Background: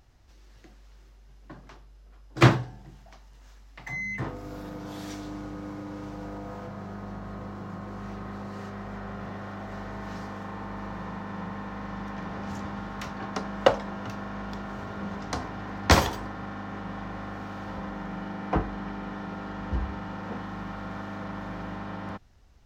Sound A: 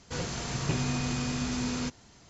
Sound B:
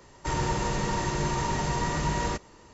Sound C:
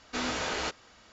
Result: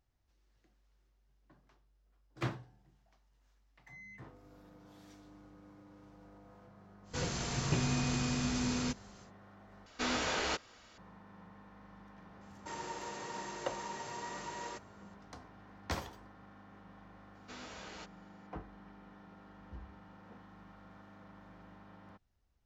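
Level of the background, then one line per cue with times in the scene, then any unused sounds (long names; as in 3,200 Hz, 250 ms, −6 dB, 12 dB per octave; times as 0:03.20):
background −19.5 dB
0:07.03: mix in A −2.5 dB, fades 0.10 s
0:09.86: overwrite with C −2 dB
0:12.41: mix in B −12.5 dB + high-pass filter 330 Hz
0:17.35: mix in C −17 dB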